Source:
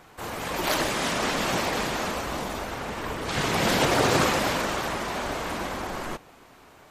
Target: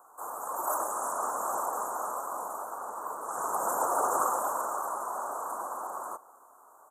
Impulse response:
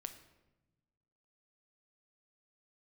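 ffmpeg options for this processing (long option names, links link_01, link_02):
-filter_complex "[0:a]highpass=1200,highshelf=frequency=2100:gain=-6,acontrast=58,asuperstop=centerf=3100:order=12:qfactor=0.52,asplit=2[link_01][link_02];[link_02]adelay=230,highpass=300,lowpass=3400,asoftclip=type=hard:threshold=-22dB,volume=-23dB[link_03];[link_01][link_03]amix=inputs=2:normalize=0"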